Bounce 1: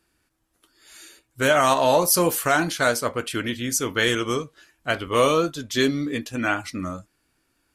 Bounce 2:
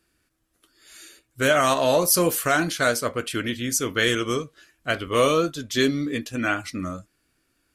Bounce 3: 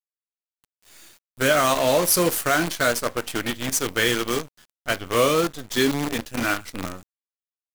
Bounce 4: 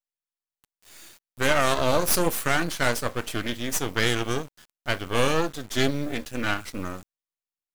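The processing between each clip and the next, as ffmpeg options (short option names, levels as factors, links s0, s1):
-af "equalizer=f=880:t=o:w=0.38:g=-7.5"
-af "acrusher=bits=5:dc=4:mix=0:aa=0.000001"
-af "aeval=exprs='max(val(0),0)':c=same,volume=1.12"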